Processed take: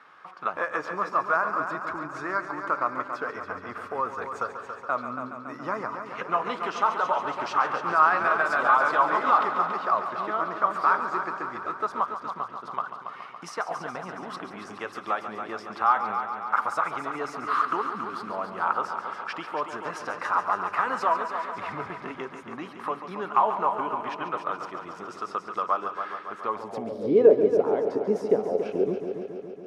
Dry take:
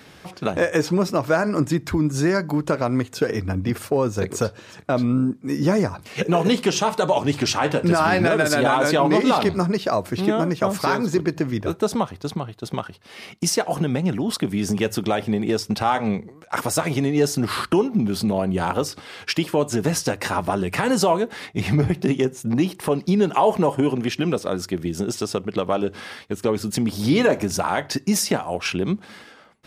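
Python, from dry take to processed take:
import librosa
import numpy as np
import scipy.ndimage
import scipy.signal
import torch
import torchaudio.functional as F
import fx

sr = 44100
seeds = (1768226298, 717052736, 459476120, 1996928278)

y = fx.echo_heads(x, sr, ms=140, heads='first and second', feedback_pct=65, wet_db=-11.0)
y = fx.filter_sweep_bandpass(y, sr, from_hz=1200.0, to_hz=440.0, start_s=26.45, end_s=27.15, q=4.9)
y = y * librosa.db_to_amplitude(6.5)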